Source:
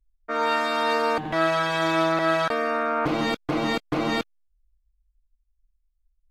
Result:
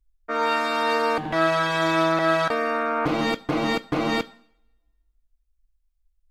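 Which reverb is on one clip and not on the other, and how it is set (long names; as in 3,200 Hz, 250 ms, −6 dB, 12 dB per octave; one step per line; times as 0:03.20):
coupled-rooms reverb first 0.59 s, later 1.6 s, from −25 dB, DRR 15 dB
level +1 dB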